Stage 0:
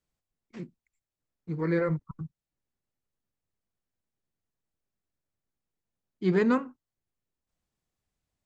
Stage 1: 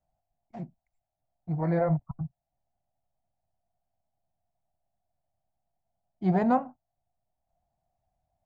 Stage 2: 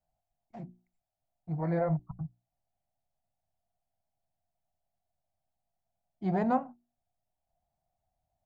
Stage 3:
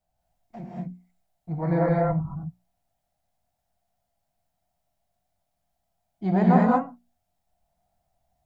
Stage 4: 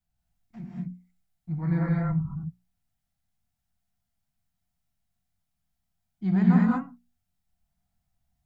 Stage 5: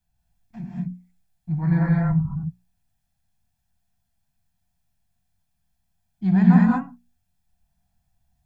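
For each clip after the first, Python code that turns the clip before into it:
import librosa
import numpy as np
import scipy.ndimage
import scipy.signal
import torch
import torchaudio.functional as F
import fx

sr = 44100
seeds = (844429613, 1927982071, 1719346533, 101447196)

y1 = fx.curve_eq(x, sr, hz=(130.0, 450.0, 700.0, 1100.0, 2900.0), db=(0, -14, 15, -9, -16))
y1 = y1 * 10.0 ** (6.0 / 20.0)
y2 = fx.hum_notches(y1, sr, base_hz=60, count=6)
y2 = y2 * 10.0 ** (-3.5 / 20.0)
y3 = fx.rev_gated(y2, sr, seeds[0], gate_ms=250, shape='rising', drr_db=-4.0)
y3 = y3 * 10.0 ** (4.0 / 20.0)
y4 = fx.curve_eq(y3, sr, hz=(220.0, 600.0, 1300.0), db=(0, -19, -3))
y5 = y4 + 0.44 * np.pad(y4, (int(1.2 * sr / 1000.0), 0))[:len(y4)]
y5 = y5 * 10.0 ** (4.0 / 20.0)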